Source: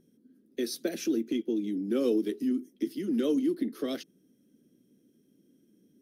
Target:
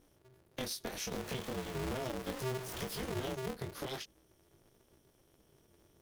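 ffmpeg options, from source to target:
ffmpeg -i in.wav -filter_complex "[0:a]asettb=1/sr,asplit=3[link_01][link_02][link_03];[link_01]atrim=end=1.114[link_04];[link_02]atrim=start=1.11:end=3.35,asetpts=PTS-STARTPTS,afade=type=in:duration=0.004:curve=qsin,afade=type=out:start_time=2.236:duration=0.004:curve=qsin,aeval=exprs='val(0)+0.5*0.015*sgn(val(0))':channel_layout=same[link_05];[link_03]atrim=start=3.346[link_06];[link_04][link_05]acrossfade=duration=0.004:curve1=hsin:curve2=qsin[link_07];[link_07][link_06]acrossfade=duration=0.004:curve1=qsin:curve2=hsin,equalizer=frequency=290:width=0.84:gain=-10.5,acompressor=threshold=-42dB:ratio=6,flanger=delay=19:depth=4.1:speed=0.42,aeval=exprs='val(0)*sgn(sin(2*PI*130*n/s))':channel_layout=same,volume=8dB" out.wav

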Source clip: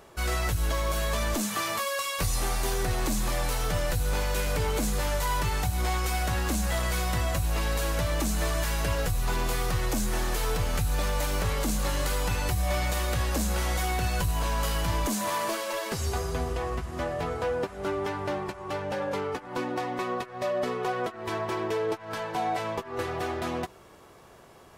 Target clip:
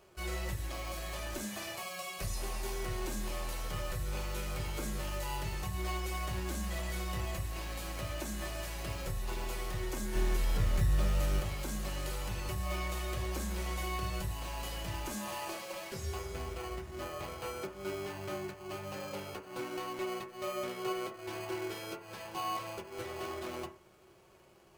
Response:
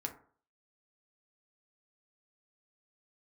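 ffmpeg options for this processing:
-filter_complex "[0:a]asettb=1/sr,asplit=3[link_01][link_02][link_03];[link_01]atrim=end=10.154[link_04];[link_02]atrim=start=10.15:end=11.4,asetpts=PTS-STARTPTS,afade=type=in:duration=0.004:curve=qsin,afade=type=out:start_time=1.246:duration=0.004:curve=qsin,lowshelf=frequency=380:gain=9[link_05];[link_03]atrim=start=11.396[link_06];[link_04][link_05]acrossfade=duration=0.004:curve1=hsin:curve2=qsin[link_07];[link_07][link_06]acrossfade=duration=0.004:curve1=qsin:curve2=hsin,acrossover=split=1400[link_08][link_09];[link_08]acrusher=samples=24:mix=1:aa=0.000001[link_10];[link_10][link_09]amix=inputs=2:normalize=0[link_11];[1:a]atrim=start_sample=2205,asetrate=57330,aresample=44100[link_12];[link_11][link_12]afir=irnorm=-1:irlink=0,volume=-7dB"

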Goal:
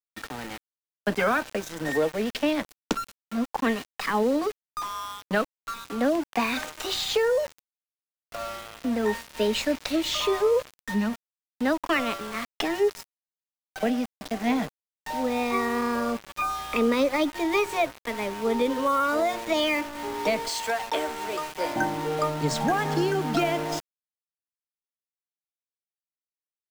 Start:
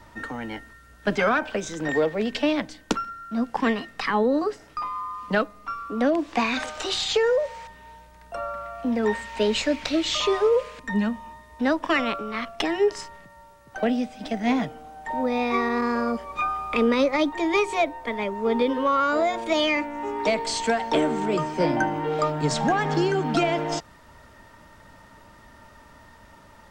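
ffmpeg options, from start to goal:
ffmpeg -i in.wav -filter_complex "[0:a]asettb=1/sr,asplit=3[link_01][link_02][link_03];[link_01]atrim=end=20.484[link_04];[link_02]atrim=start=20.48:end=21.76,asetpts=PTS-STARTPTS,afade=type=in:duration=0.004:curve=qsin,afade=type=out:start_time=1.276:duration=0.004:curve=qsin,highpass=550[link_05];[link_03]atrim=start=21.756[link_06];[link_04][link_05]acrossfade=duration=0.004:curve1=hsin:curve2=qsin[link_07];[link_07][link_06]acrossfade=duration=0.004:curve1=qsin:curve2=hsin,aeval=exprs='val(0)*gte(abs(val(0)),0.0266)':channel_layout=same,volume=-2dB" out.wav

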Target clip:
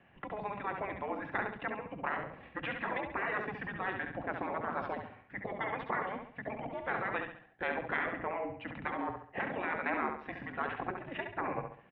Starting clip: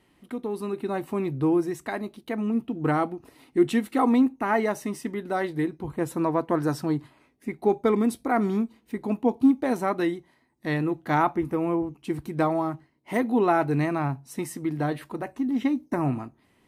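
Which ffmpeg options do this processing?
ffmpeg -i in.wav -af "aemphasis=mode=reproduction:type=50kf,atempo=1.4,afftfilt=real='re*lt(hypot(re,im),0.1)':imag='im*lt(hypot(re,im),0.1)':win_size=1024:overlap=0.75,aecho=1:1:68|136|204|272|340:0.501|0.195|0.0762|0.0297|0.0116,highpass=frequency=360:width_type=q:width=0.5412,highpass=frequency=360:width_type=q:width=1.307,lowpass=frequency=3100:width_type=q:width=0.5176,lowpass=frequency=3100:width_type=q:width=0.7071,lowpass=frequency=3100:width_type=q:width=1.932,afreqshift=-200,volume=4.5dB" out.wav

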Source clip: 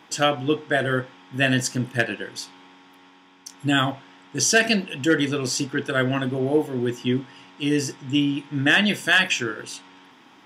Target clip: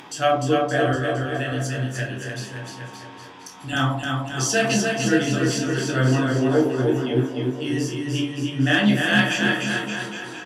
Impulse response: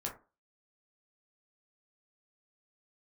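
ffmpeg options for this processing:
-filter_complex "[0:a]asettb=1/sr,asplit=3[link_01][link_02][link_03];[link_01]atrim=end=0.934[link_04];[link_02]atrim=start=0.93:end=3.73,asetpts=PTS-STARTPTS,afade=type=in:duration=0.004:curve=qsin,afade=type=out:start_time=2.796:duration=0.004:curve=qsin,acrossover=split=130|1000[link_05][link_06][link_07];[link_05]acompressor=threshold=-35dB:ratio=4[link_08];[link_06]acompressor=threshold=-34dB:ratio=4[link_09];[link_07]acompressor=threshold=-27dB:ratio=4[link_10];[link_08][link_09][link_10]amix=inputs=3:normalize=0[link_11];[link_03]atrim=start=3.726[link_12];[link_04][link_11]acrossfade=duration=0.004:curve1=hsin:curve2=qsin[link_13];[link_13][link_12]acrossfade=duration=0.004:curve1=qsin:curve2=hsin[link_14];[1:a]atrim=start_sample=2205,asetrate=31311,aresample=44100[link_15];[link_14][link_15]afir=irnorm=-1:irlink=0,acompressor=mode=upward:threshold=-30dB:ratio=2.5,flanger=delay=7.8:depth=6.1:regen=-62:speed=0.47:shape=sinusoidal,aecho=1:1:300|570|813|1032|1229:0.631|0.398|0.251|0.158|0.1,asoftclip=type=hard:threshold=-7.5dB"

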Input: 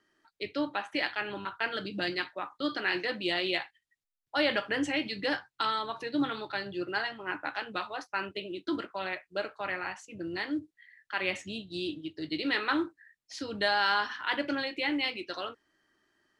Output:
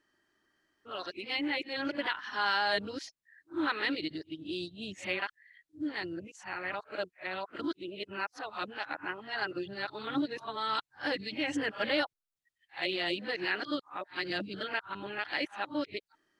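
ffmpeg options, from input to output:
ffmpeg -i in.wav -af "areverse,volume=-2.5dB" out.wav

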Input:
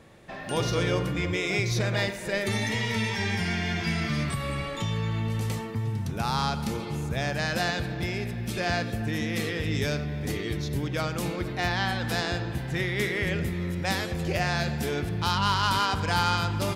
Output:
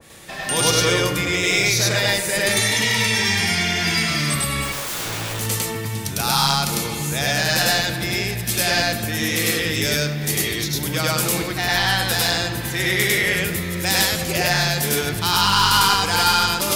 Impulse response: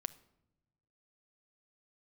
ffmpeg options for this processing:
-filter_complex "[0:a]acrossover=split=220[link_01][link_02];[link_01]alimiter=level_in=6.5dB:limit=-24dB:level=0:latency=1:release=158,volume=-6.5dB[link_03];[link_02]crystalizer=i=6.5:c=0[link_04];[link_03][link_04]amix=inputs=2:normalize=0,asettb=1/sr,asplit=3[link_05][link_06][link_07];[link_05]atrim=end=4.624[link_08];[link_06]atrim=start=4.62:end=5.36,asetpts=PTS-STARTPTS,afade=type=in:duration=0.004:curve=qsin,afade=type=out:start_time=0.736:duration=0.004:curve=qsin,aeval=exprs='(mod(17.8*val(0)+1,2)-1)/17.8':channel_layout=same[link_09];[link_07]atrim=start=5.356[link_10];[link_08][link_09]acrossfade=duration=0.004:curve1=hsin:curve2=qsin[link_11];[link_11][link_10]acrossfade=duration=0.004:curve1=qsin:curve2=hsin,acontrast=76,asplit=2[link_12][link_13];[1:a]atrim=start_sample=2205,adelay=101[link_14];[link_13][link_14]afir=irnorm=-1:irlink=0,volume=3.5dB[link_15];[link_12][link_15]amix=inputs=2:normalize=0,adynamicequalizer=threshold=0.0501:dfrequency=1900:dqfactor=0.7:tfrequency=1900:tqfactor=0.7:attack=5:release=100:ratio=0.375:range=2:mode=cutabove:tftype=highshelf,volume=-5dB"

